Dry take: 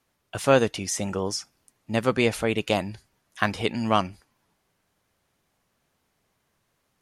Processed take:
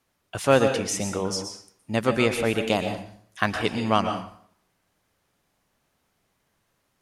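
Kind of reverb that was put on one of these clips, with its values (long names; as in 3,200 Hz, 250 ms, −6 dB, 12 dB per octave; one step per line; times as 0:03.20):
dense smooth reverb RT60 0.56 s, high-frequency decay 0.8×, pre-delay 105 ms, DRR 6 dB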